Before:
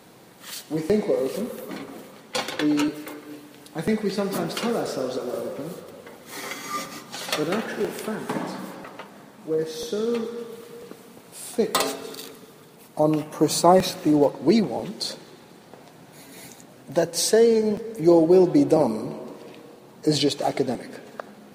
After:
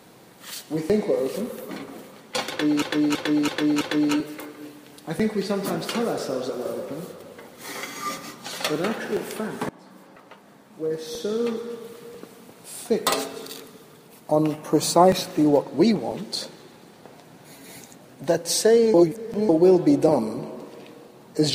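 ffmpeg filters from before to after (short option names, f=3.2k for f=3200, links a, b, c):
-filter_complex "[0:a]asplit=8[a][b][c][d][e][f][g][h];[a]atrim=end=2.822[i];[b]atrim=start=2.488:end=2.822[j];[c]atrim=start=2.488:end=2.822[k];[d]atrim=start=2.488:end=2.822[l];[e]atrim=start=2.488:end=8.37,asetpts=PTS-STARTPTS,afade=t=out:st=5.878:d=0.004:c=hsin:silence=0.0841395[m];[f]atrim=start=8.37:end=17.622,asetpts=PTS-STARTPTS,afade=t=in:d=1.62:silence=0.0841395[n];[g]atrim=start=17.618:end=18.172,asetpts=PTS-STARTPTS,areverse[o];[h]atrim=start=18.168[p];[i][j]acrossfade=d=0.004:c1=hsin:c2=hsin[q];[q][k]acrossfade=d=0.004:c1=hsin:c2=hsin[r];[r][l]acrossfade=d=0.004:c1=hsin:c2=hsin[s];[m][n]concat=n=2:v=0:a=1[t];[s][t]acrossfade=d=0.004:c1=hsin:c2=hsin[u];[u][o]acrossfade=d=0.004:c1=hsin:c2=hsin[v];[v][p]acrossfade=d=0.004:c1=hsin:c2=hsin"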